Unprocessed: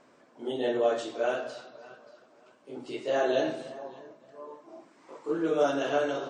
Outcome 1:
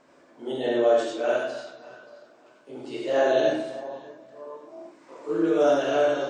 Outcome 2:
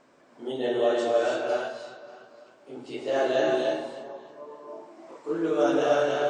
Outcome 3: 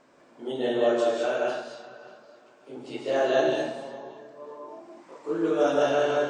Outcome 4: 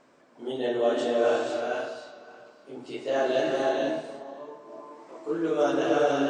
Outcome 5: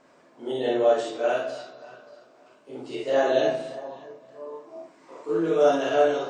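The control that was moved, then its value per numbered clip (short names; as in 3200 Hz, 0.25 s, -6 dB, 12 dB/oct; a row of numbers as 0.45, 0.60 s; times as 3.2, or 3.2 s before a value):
non-linear reverb, gate: 120, 340, 230, 520, 80 ms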